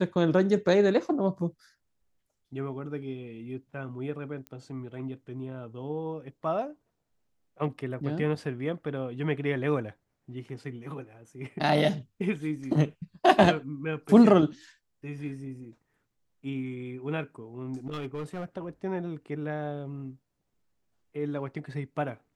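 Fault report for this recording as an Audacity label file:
4.470000	4.470000	pop -26 dBFS
17.730000	18.450000	clipped -30 dBFS

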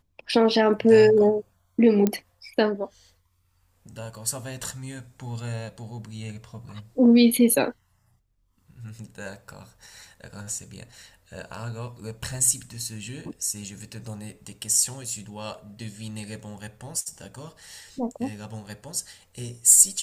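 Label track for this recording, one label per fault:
2.070000	2.070000	pop -9 dBFS

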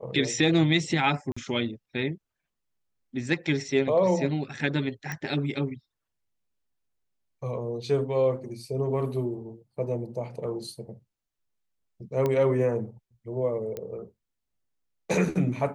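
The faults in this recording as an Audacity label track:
1.320000	1.360000	gap 45 ms
5.120000	5.120000	pop -19 dBFS
12.260000	12.260000	pop -15 dBFS
13.770000	13.770000	pop -21 dBFS

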